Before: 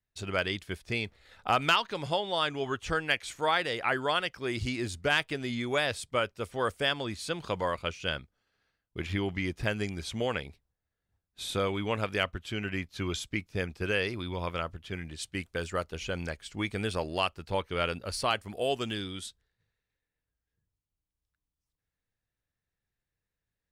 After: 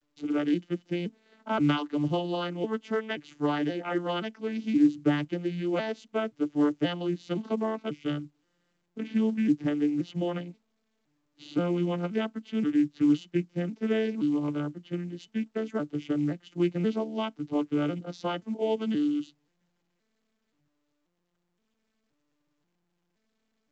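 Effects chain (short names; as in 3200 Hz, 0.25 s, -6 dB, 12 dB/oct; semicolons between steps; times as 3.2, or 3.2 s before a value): arpeggiated vocoder minor triad, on D3, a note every 0.526 s; small resonant body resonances 300/3000 Hz, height 16 dB, ringing for 60 ms; gain -1 dB; µ-law 128 kbps 16000 Hz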